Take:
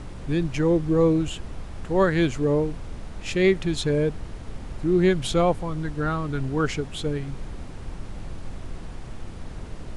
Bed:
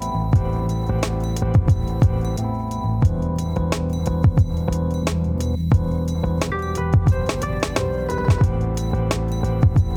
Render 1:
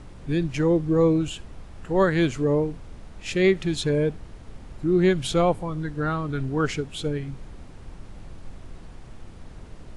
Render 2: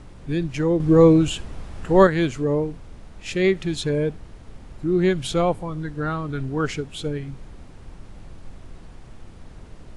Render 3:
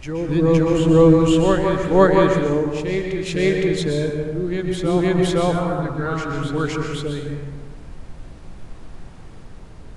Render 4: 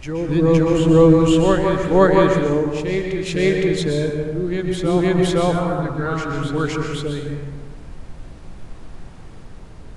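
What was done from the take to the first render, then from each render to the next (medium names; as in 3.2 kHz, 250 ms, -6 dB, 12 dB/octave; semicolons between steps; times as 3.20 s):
noise print and reduce 6 dB
0.80–2.07 s: gain +6.5 dB
reverse echo 513 ms -5 dB; plate-style reverb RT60 1.3 s, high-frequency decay 0.55×, pre-delay 110 ms, DRR 2 dB
trim +1 dB; peak limiter -3 dBFS, peak gain reduction 2 dB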